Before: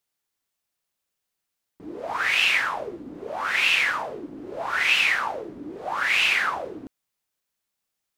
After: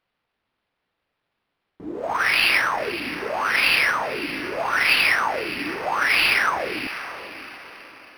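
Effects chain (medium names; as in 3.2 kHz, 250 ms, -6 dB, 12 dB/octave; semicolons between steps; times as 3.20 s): echo that smears into a reverb 577 ms, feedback 42%, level -12 dB; decimation joined by straight lines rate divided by 6×; trim +5 dB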